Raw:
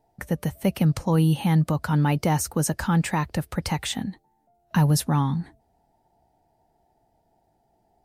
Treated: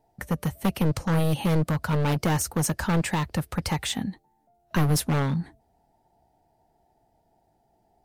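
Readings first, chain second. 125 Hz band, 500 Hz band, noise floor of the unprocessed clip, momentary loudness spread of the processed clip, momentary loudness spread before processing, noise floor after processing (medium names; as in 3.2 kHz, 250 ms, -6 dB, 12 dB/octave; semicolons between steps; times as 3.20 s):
-3.0 dB, 0.0 dB, -68 dBFS, 7 LU, 9 LU, -68 dBFS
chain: one-sided wavefolder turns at -20 dBFS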